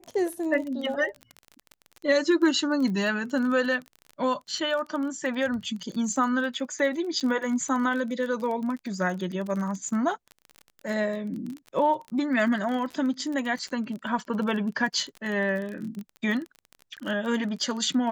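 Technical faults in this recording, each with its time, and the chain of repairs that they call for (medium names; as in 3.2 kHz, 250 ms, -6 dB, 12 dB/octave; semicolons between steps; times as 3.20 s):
crackle 27 per s -32 dBFS
7.20–7.21 s: dropout 6.9 ms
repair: de-click; interpolate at 7.20 s, 6.9 ms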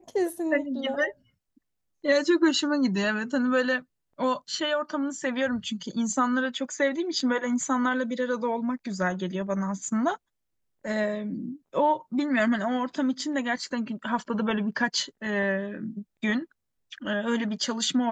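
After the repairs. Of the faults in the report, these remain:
nothing left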